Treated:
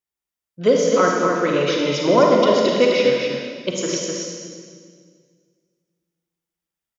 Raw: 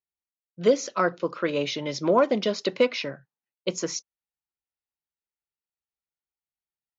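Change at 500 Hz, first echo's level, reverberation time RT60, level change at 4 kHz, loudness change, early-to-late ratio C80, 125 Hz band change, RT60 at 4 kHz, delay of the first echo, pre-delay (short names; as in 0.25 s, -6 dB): +8.5 dB, -5.0 dB, 1.9 s, +7.5 dB, +7.5 dB, 0.0 dB, +8.5 dB, 1.7 s, 0.254 s, 34 ms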